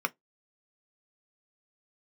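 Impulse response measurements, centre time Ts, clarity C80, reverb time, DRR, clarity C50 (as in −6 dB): 2 ms, 45.5 dB, non-exponential decay, 8.0 dB, 32.5 dB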